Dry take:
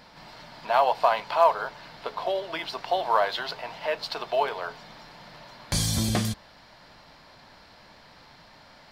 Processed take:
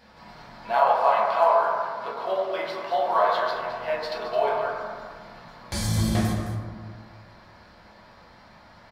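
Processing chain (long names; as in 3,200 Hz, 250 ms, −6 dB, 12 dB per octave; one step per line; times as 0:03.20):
0:00.71–0:03.41: Bessel high-pass filter 170 Hz, order 2
single-tap delay 215 ms −11 dB
convolution reverb RT60 1.8 s, pre-delay 7 ms, DRR −6.5 dB
level −6.5 dB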